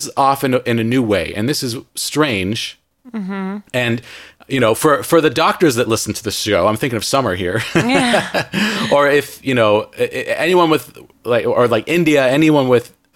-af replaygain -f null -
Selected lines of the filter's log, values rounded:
track_gain = -4.3 dB
track_peak = 0.607